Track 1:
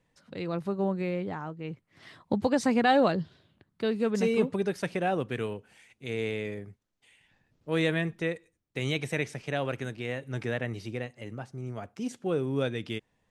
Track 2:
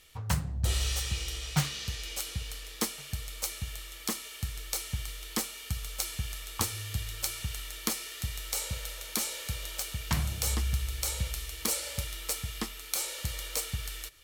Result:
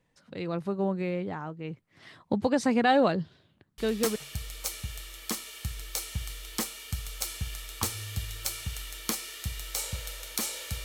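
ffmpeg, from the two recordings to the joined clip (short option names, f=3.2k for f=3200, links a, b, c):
-filter_complex "[0:a]apad=whole_dur=10.84,atrim=end=10.84,atrim=end=4.16,asetpts=PTS-STARTPTS[a];[1:a]atrim=start=2.56:end=9.62,asetpts=PTS-STARTPTS[b];[a][b]acrossfade=d=0.38:c1=log:c2=log"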